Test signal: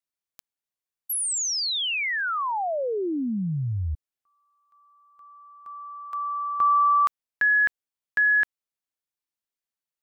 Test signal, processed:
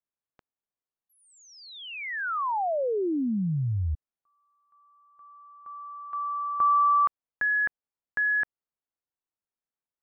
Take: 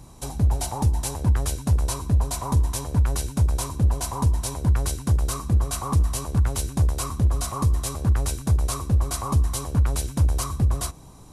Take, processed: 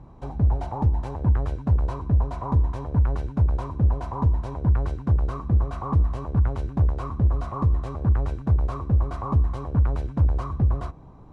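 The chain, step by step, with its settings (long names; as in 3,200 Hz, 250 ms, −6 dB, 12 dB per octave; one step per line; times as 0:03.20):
low-pass filter 1,400 Hz 12 dB per octave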